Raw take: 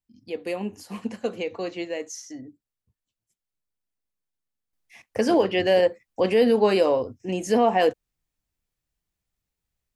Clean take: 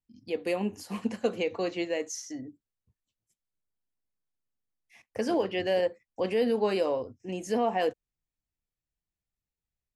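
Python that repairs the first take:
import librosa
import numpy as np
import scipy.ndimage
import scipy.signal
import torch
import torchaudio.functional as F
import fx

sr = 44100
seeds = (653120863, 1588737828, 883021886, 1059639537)

y = fx.fix_level(x, sr, at_s=4.73, step_db=-7.5)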